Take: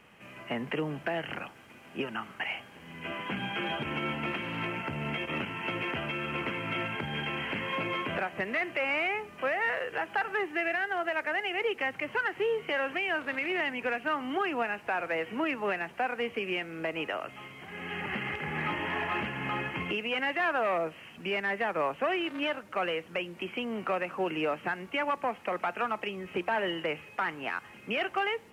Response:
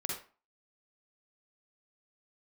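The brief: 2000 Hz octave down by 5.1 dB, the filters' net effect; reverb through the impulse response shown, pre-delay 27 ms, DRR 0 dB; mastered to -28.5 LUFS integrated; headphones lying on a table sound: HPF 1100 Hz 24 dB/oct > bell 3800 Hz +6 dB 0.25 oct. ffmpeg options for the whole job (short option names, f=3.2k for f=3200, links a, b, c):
-filter_complex "[0:a]equalizer=f=2k:t=o:g=-6.5,asplit=2[a][b];[1:a]atrim=start_sample=2205,adelay=27[c];[b][c]afir=irnorm=-1:irlink=0,volume=-2.5dB[d];[a][d]amix=inputs=2:normalize=0,highpass=f=1.1k:w=0.5412,highpass=f=1.1k:w=1.3066,equalizer=f=3.8k:t=o:w=0.25:g=6,volume=7dB"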